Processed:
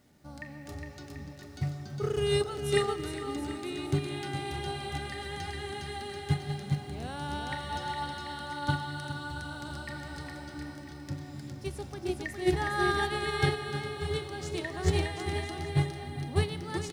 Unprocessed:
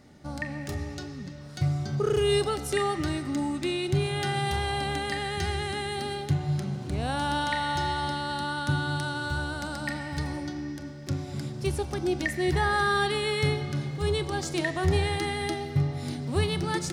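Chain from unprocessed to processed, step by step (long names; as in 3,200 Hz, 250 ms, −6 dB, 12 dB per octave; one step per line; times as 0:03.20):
0:15.67–0:16.36: low-pass filter 1,300 Hz
bit-depth reduction 10 bits, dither none
on a send: bouncing-ball delay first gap 410 ms, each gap 0.8×, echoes 5
on the sum: expander for the loud parts 2.5 to 1, over −26 dBFS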